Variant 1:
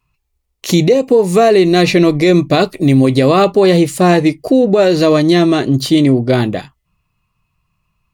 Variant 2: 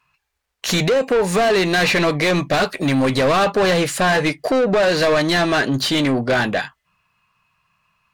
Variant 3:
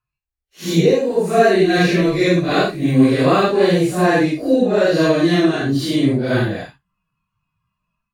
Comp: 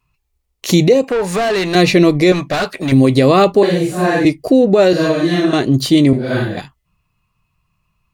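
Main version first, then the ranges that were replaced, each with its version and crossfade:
1
1.04–1.75 s: from 2
2.32–2.92 s: from 2
3.63–4.25 s: from 3
4.93–5.53 s: from 3
6.13–6.57 s: from 3

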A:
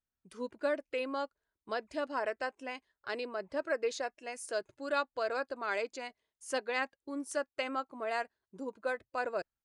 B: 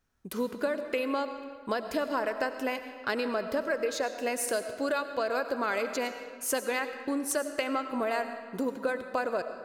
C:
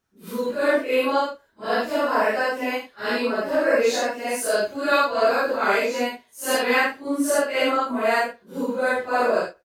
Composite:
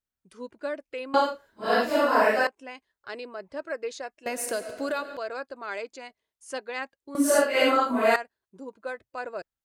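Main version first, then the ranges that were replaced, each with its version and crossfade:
A
1.14–2.47 s: from C
4.26–5.17 s: from B
7.15–8.16 s: from C

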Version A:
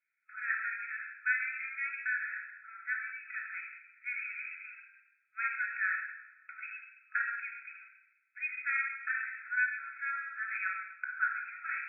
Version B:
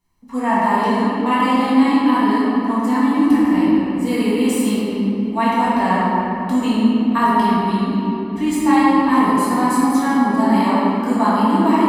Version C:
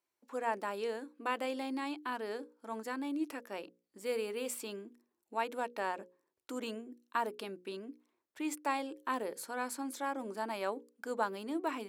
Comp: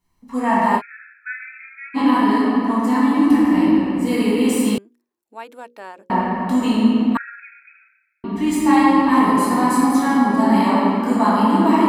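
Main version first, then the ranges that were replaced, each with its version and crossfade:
B
0.79–1.97 s: from A, crossfade 0.06 s
4.78–6.10 s: from C
7.17–8.24 s: from A

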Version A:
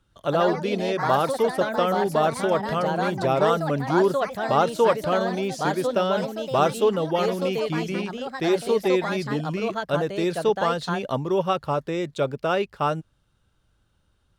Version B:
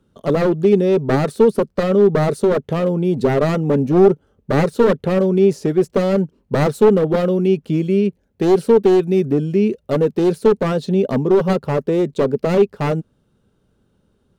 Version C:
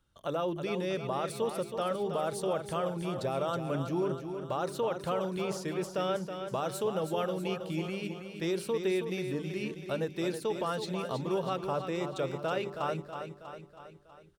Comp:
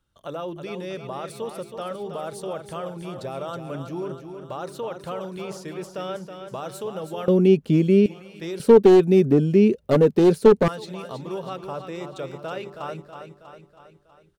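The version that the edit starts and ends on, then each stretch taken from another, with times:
C
7.28–8.06 s: from B
8.60–10.68 s: from B
not used: A

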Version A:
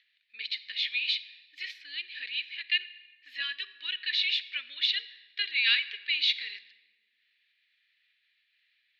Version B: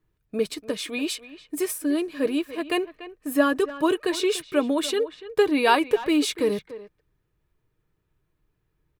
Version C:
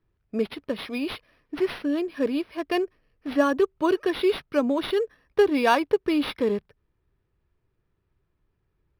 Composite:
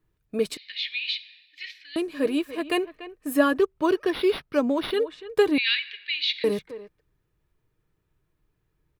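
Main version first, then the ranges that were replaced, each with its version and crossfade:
B
0.57–1.96 s: from A
3.58–4.93 s: from C
5.58–6.44 s: from A

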